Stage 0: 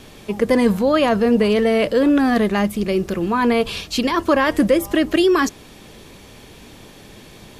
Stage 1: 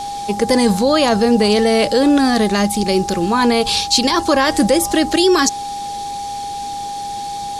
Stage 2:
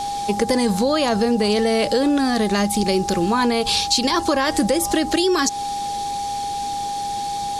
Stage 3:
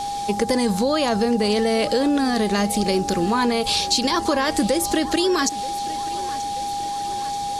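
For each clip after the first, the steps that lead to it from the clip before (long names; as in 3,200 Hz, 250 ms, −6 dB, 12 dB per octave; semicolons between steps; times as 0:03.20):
flat-topped bell 6,100 Hz +12.5 dB; in parallel at +2 dB: brickwall limiter −10 dBFS, peak gain reduction 8 dB; on the sum: steady tone 810 Hz −19 dBFS; level −4 dB
downward compressor, threshold −15 dBFS, peak gain reduction 6.5 dB
feedback echo with a high-pass in the loop 932 ms, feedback 63%, high-pass 200 Hz, level −17 dB; level −1.5 dB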